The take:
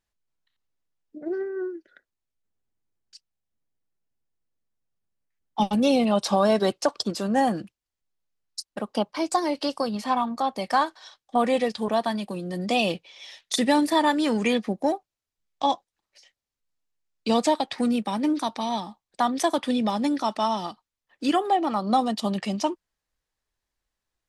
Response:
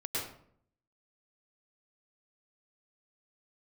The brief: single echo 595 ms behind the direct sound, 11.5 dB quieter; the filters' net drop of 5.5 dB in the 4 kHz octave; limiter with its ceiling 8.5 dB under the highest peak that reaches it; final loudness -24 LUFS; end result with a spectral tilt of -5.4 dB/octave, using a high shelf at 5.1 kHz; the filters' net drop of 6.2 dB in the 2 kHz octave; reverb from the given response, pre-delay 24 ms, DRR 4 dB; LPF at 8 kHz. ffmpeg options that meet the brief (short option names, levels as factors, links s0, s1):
-filter_complex "[0:a]lowpass=8000,equalizer=f=2000:t=o:g=-7,equalizer=f=4000:t=o:g=-6.5,highshelf=f=5100:g=4.5,alimiter=limit=0.126:level=0:latency=1,aecho=1:1:595:0.266,asplit=2[s0][s1];[1:a]atrim=start_sample=2205,adelay=24[s2];[s1][s2]afir=irnorm=-1:irlink=0,volume=0.376[s3];[s0][s3]amix=inputs=2:normalize=0,volume=1.41"